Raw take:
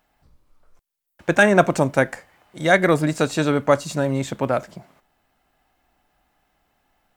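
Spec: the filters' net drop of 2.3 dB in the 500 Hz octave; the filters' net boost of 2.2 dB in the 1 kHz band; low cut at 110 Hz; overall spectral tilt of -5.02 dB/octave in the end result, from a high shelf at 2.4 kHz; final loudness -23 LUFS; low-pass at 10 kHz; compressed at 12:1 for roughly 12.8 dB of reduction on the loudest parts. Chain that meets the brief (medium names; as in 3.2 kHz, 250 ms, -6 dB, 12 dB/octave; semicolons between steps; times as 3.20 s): high-pass 110 Hz; low-pass 10 kHz; peaking EQ 500 Hz -4.5 dB; peaking EQ 1 kHz +6 dB; treble shelf 2.4 kHz -4.5 dB; compression 12:1, threshold -22 dBFS; trim +6 dB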